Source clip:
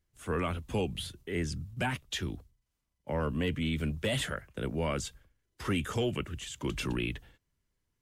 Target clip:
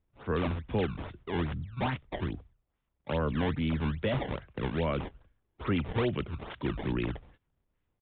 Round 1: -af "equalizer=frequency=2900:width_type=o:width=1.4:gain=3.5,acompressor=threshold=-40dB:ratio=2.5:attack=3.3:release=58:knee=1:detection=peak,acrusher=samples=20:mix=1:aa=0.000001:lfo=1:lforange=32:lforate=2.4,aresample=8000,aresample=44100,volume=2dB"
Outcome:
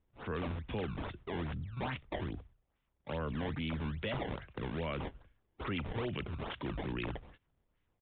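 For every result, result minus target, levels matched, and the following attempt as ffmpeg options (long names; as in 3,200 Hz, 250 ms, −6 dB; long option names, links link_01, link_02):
downward compressor: peak gain reduction +9.5 dB; 4,000 Hz band +3.0 dB
-af "equalizer=frequency=2900:width_type=o:width=1.4:gain=3.5,acrusher=samples=20:mix=1:aa=0.000001:lfo=1:lforange=32:lforate=2.4,aresample=8000,aresample=44100,volume=2dB"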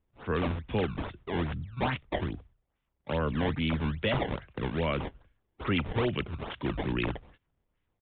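4,000 Hz band +3.5 dB
-af "equalizer=frequency=2900:width_type=o:width=1.4:gain=-4,acrusher=samples=20:mix=1:aa=0.000001:lfo=1:lforange=32:lforate=2.4,aresample=8000,aresample=44100,volume=2dB"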